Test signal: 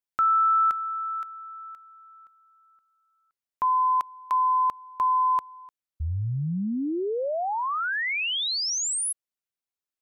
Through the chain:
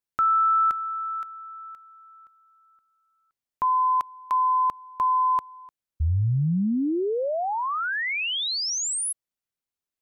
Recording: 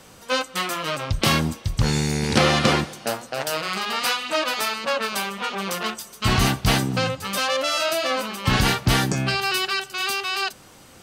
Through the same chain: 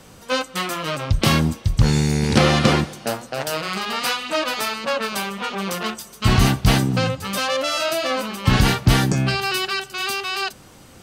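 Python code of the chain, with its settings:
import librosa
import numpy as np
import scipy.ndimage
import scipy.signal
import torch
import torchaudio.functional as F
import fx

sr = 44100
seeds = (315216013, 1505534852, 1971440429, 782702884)

y = fx.low_shelf(x, sr, hz=330.0, db=6.0)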